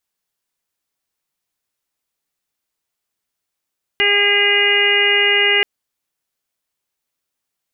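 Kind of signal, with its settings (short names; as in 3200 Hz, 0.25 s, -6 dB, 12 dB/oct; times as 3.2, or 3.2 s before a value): steady additive tone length 1.63 s, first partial 407 Hz, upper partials -7.5/-12/-2/5/-1/4.5 dB, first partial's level -20.5 dB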